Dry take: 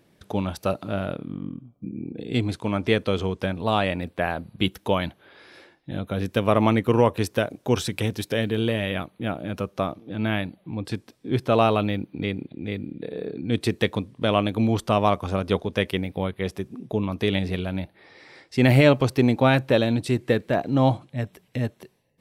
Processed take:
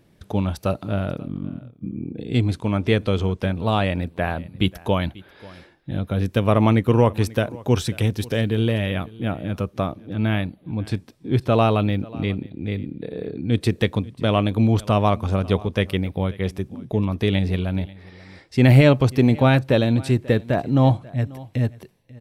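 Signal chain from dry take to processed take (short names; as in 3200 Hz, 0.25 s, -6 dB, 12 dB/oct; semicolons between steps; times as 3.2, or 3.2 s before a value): low shelf 130 Hz +11.5 dB; echo 0.539 s -21.5 dB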